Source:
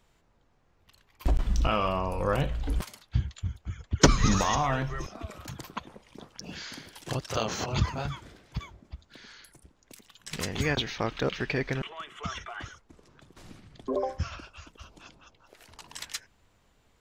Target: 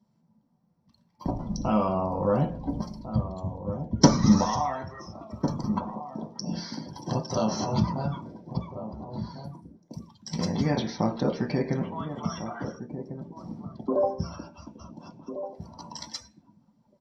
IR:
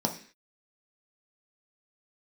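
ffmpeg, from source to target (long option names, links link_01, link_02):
-filter_complex "[0:a]asplit=2[link_01][link_02];[link_02]acompressor=threshold=-39dB:ratio=6,volume=2dB[link_03];[link_01][link_03]amix=inputs=2:normalize=0,asettb=1/sr,asplit=3[link_04][link_05][link_06];[link_04]atrim=end=4.444[link_07];[link_05]atrim=start=4.44:end=5.49,asetpts=PTS-STARTPTS,afade=type=in:duration=0.004:curve=qsin,afade=type=out:start_time=1.046:duration=0.004:curve=qsin,highpass=frequency=910:poles=1[link_08];[link_06]atrim=start=5.486[link_09];[link_07][link_08]acrossfade=duration=0.004:curve1=hsin:curve2=qsin[link_10];[link_10][link_09]acrossfade=duration=0.004:curve1=qsin:curve2=hsin,asplit=2[link_11][link_12];[link_12]adelay=1399,volume=-10dB,highshelf=frequency=4000:gain=-31.5[link_13];[link_11][link_13]amix=inputs=2:normalize=0[link_14];[1:a]atrim=start_sample=2205[link_15];[link_14][link_15]afir=irnorm=-1:irlink=0,afftdn=noise_reduction=15:noise_floor=-36,volume=-11dB"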